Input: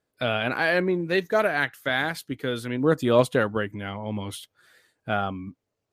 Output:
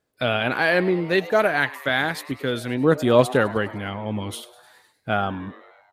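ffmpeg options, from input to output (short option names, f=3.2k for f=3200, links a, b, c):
-filter_complex "[0:a]asplit=7[a][b][c][d][e][f][g];[b]adelay=102,afreqshift=130,volume=-18.5dB[h];[c]adelay=204,afreqshift=260,volume=-22.4dB[i];[d]adelay=306,afreqshift=390,volume=-26.3dB[j];[e]adelay=408,afreqshift=520,volume=-30.1dB[k];[f]adelay=510,afreqshift=650,volume=-34dB[l];[g]adelay=612,afreqshift=780,volume=-37.9dB[m];[a][h][i][j][k][l][m]amix=inputs=7:normalize=0,volume=3dB"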